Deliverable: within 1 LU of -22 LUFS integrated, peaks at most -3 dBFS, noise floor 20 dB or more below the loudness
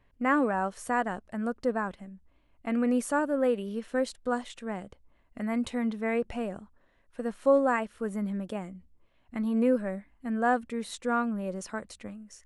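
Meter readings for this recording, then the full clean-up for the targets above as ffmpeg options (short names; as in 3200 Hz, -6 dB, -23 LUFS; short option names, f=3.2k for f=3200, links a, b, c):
loudness -30.0 LUFS; peak -12.0 dBFS; loudness target -22.0 LUFS
-> -af "volume=8dB"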